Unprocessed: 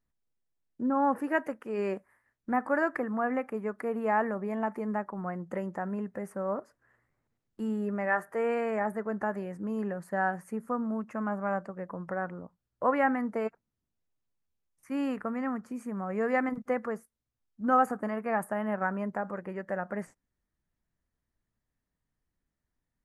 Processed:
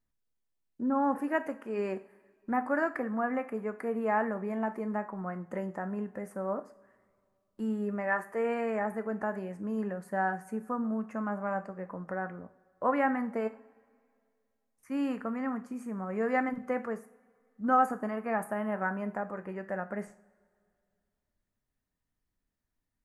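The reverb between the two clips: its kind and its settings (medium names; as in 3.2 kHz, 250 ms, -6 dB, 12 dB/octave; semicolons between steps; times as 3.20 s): two-slope reverb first 0.39 s, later 2.3 s, from -22 dB, DRR 9 dB; trim -2 dB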